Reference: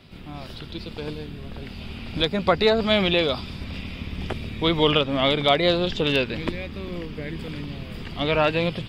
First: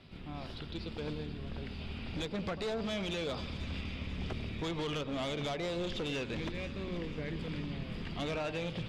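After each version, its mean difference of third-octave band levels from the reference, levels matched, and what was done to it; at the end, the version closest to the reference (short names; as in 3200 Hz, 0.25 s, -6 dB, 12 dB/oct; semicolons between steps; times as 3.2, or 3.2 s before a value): 5.5 dB: compressor 6:1, threshold -23 dBFS, peak gain reduction 10 dB; overloaded stage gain 26.5 dB; air absorption 54 m; split-band echo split 1200 Hz, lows 93 ms, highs 0.489 s, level -12.5 dB; gain -6 dB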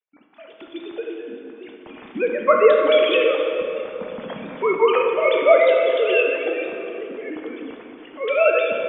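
13.0 dB: sine-wave speech; reverb removal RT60 1.9 s; gate -47 dBFS, range -37 dB; plate-style reverb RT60 3.2 s, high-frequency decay 0.6×, DRR 0 dB; gain +2 dB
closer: first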